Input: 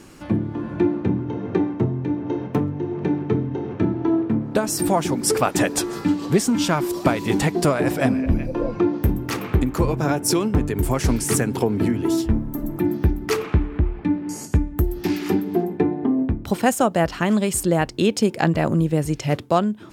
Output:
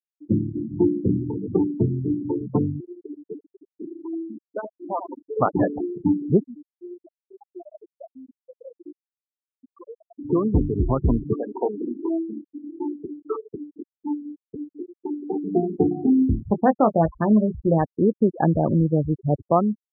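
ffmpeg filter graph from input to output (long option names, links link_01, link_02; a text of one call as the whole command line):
ffmpeg -i in.wav -filter_complex "[0:a]asettb=1/sr,asplit=3[link_01][link_02][link_03];[link_01]atrim=end=2.804[link_04];[link_02]atrim=start=2.8:end=5.37,asetpts=PTS-STARTPTS,afade=type=in:duration=0.004:curve=qsin,afade=type=out:start_time=2.566:duration=0.004:curve=qsin,highpass=frequency=1300:poles=1,aecho=1:1:79:0.422,atrim=end_sample=113337[link_05];[link_03]atrim=start=5.366[link_06];[link_04][link_05]acrossfade=duration=0.004:curve1=hsin:curve2=qsin[link_07];[link_07][link_06]acrossfade=duration=0.004:curve1=qsin:curve2=hsin,asettb=1/sr,asplit=3[link_08][link_09][link_10];[link_08]atrim=end=6.444[link_11];[link_09]atrim=start=6.44:end=10.19,asetpts=PTS-STARTPTS,afade=type=in:duration=0.004:curve=qsin,afade=type=out:start_time=3.746:duration=0.004:curve=qsin,highpass=630,lowpass=4600,acompressor=threshold=-27dB:ratio=8:attack=3.2:release=140:knee=1:detection=peak,flanger=delay=15.5:depth=7.1:speed=1.1[link_12];[link_10]atrim=start=10.186[link_13];[link_11][link_12]acrossfade=duration=0.004:curve1=hsin:curve2=qsin[link_14];[link_14][link_13]acrossfade=duration=0.004:curve1=qsin:curve2=hsin,asettb=1/sr,asplit=3[link_15][link_16][link_17];[link_15]atrim=end=11.344[link_18];[link_16]atrim=start=11.34:end=15.44,asetpts=PTS-STARTPTS,afade=type=in:duration=0.004:curve=qsin,afade=type=out:start_time=4.096:duration=0.004:curve=qsin,highpass=430,lowpass=2000,asplit=2[link_19][link_20];[link_20]adelay=24,volume=-8dB[link_21];[link_19][link_21]amix=inputs=2:normalize=0,atrim=end_sample=180810[link_22];[link_17]atrim=start=15.436[link_23];[link_18][link_22]acrossfade=duration=0.004:curve1=hsin:curve2=qsin[link_24];[link_24][link_23]acrossfade=duration=0.004:curve1=qsin:curve2=hsin,asettb=1/sr,asplit=3[link_25][link_26][link_27];[link_25]atrim=end=15.944[link_28];[link_26]atrim=start=15.94:end=17.78,asetpts=PTS-STARTPTS,afade=type=in:duration=0.004:curve=qsin,afade=type=out:start_time=1.836:duration=0.004:curve=qsin,aeval=exprs='val(0)+0.00562*(sin(2*PI*50*n/s)+sin(2*PI*2*50*n/s)/2+sin(2*PI*3*50*n/s)/3+sin(2*PI*4*50*n/s)/4+sin(2*PI*5*50*n/s)/5)':channel_layout=same,asplit=2[link_29][link_30];[link_30]adelay=19,volume=-7dB[link_31];[link_29][link_31]amix=inputs=2:normalize=0,atrim=end_sample=81144[link_32];[link_27]atrim=start=17.776[link_33];[link_28][link_32]acrossfade=duration=0.004:curve1=hsin:curve2=qsin[link_34];[link_34][link_33]acrossfade=duration=0.004:curve1=qsin:curve2=hsin,lowpass=frequency=1500:width=0.5412,lowpass=frequency=1500:width=1.3066,afftfilt=real='re*gte(hypot(re,im),0.141)':imag='im*gte(hypot(re,im),0.141)':win_size=1024:overlap=0.75" out.wav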